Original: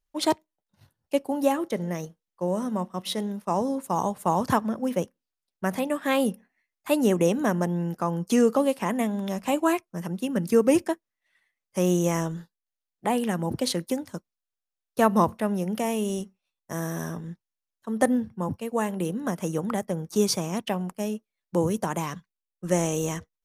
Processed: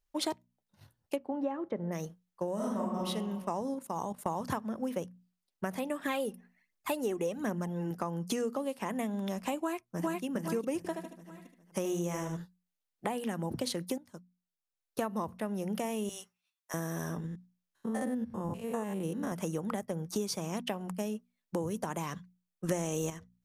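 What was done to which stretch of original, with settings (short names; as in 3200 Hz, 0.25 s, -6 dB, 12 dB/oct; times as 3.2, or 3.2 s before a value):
1.15–1.91 LPF 2400 Hz -> 1300 Hz
2.55–3.06 reverb throw, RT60 1.1 s, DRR -6 dB
3.74–4.26 level quantiser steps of 16 dB
5.99–7.91 phaser 1.3 Hz
9.58–10.23 echo throw 0.41 s, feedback 30%, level 0 dB
10.77–12.37 feedback echo 75 ms, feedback 30%, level -7.5 dB
13.98–15.11 fade in, from -18 dB
16.09–16.74 HPF 1100 Hz
17.26–19.32 stepped spectrum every 0.1 s
22.69–23.1 gain +11 dB
whole clip: notches 60/120/180/240 Hz; compressor 6:1, threshold -31 dBFS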